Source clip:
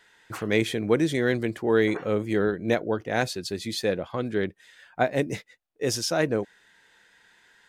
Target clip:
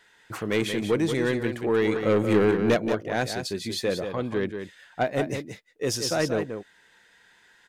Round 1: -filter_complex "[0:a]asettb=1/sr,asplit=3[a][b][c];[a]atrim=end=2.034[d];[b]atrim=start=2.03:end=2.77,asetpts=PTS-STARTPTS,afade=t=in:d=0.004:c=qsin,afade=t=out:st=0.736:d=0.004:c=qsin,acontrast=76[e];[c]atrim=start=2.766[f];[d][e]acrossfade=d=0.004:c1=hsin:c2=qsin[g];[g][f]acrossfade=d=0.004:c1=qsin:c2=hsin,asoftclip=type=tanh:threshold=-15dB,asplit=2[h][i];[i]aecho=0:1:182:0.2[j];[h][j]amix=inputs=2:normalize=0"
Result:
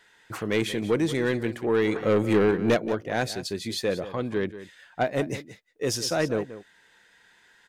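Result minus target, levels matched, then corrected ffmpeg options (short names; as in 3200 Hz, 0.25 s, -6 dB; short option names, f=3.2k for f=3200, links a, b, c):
echo-to-direct -6.5 dB
-filter_complex "[0:a]asettb=1/sr,asplit=3[a][b][c];[a]atrim=end=2.034[d];[b]atrim=start=2.03:end=2.77,asetpts=PTS-STARTPTS,afade=t=in:d=0.004:c=qsin,afade=t=out:st=0.736:d=0.004:c=qsin,acontrast=76[e];[c]atrim=start=2.766[f];[d][e]acrossfade=d=0.004:c1=hsin:c2=qsin[g];[g][f]acrossfade=d=0.004:c1=qsin:c2=hsin,asoftclip=type=tanh:threshold=-15dB,asplit=2[h][i];[i]aecho=0:1:182:0.422[j];[h][j]amix=inputs=2:normalize=0"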